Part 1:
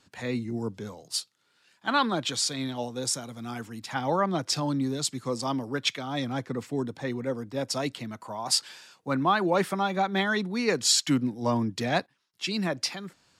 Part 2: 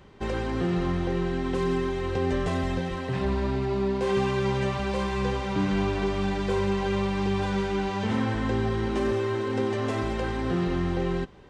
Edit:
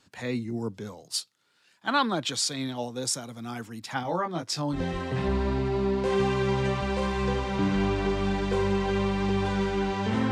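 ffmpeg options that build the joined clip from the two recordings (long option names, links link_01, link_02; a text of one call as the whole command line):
ffmpeg -i cue0.wav -i cue1.wav -filter_complex "[0:a]asettb=1/sr,asplit=3[link_01][link_02][link_03];[link_01]atrim=end=4.034[link_04];[link_02]atrim=start=4.03:end=4.83,asetpts=PTS-STARTPTS,afade=type=in:duration=0.004:curve=qsin,afade=type=out:start_time=0.796:duration=0.004:curve=qsin,flanger=delay=17:depth=7.8:speed=0.38[link_05];[link_03]atrim=start=4.826[link_06];[link_04][link_05]acrossfade=duration=0.004:curve1=hsin:curve2=qsin[link_07];[link_07][link_06]acrossfade=duration=0.004:curve1=qsin:curve2=hsin,apad=whole_dur=10.31,atrim=end=10.31,atrim=end=4.83,asetpts=PTS-STARTPTS[link_08];[1:a]atrim=start=2.68:end=8.28,asetpts=PTS-STARTPTS[link_09];[link_08][link_09]acrossfade=duration=0.12:curve1=tri:curve2=tri" out.wav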